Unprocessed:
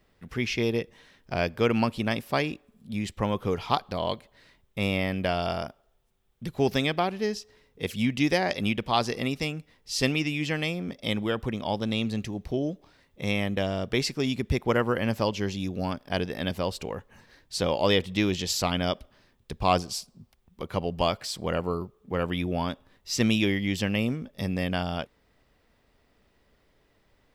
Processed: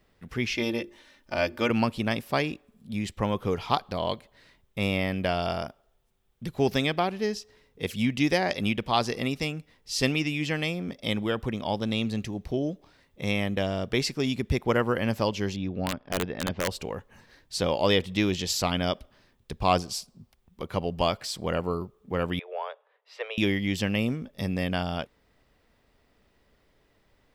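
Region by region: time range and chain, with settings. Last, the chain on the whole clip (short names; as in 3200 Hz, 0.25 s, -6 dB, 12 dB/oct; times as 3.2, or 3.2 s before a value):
0.54–1.7 low shelf 210 Hz -5.5 dB + notches 50/100/150/200/250/300/350/400 Hz + comb 3.4 ms, depth 63%
15.56–16.7 Gaussian blur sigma 2.3 samples + wrapped overs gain 18 dB
22.39–23.38 steep high-pass 420 Hz 96 dB/oct + air absorption 490 m
whole clip: dry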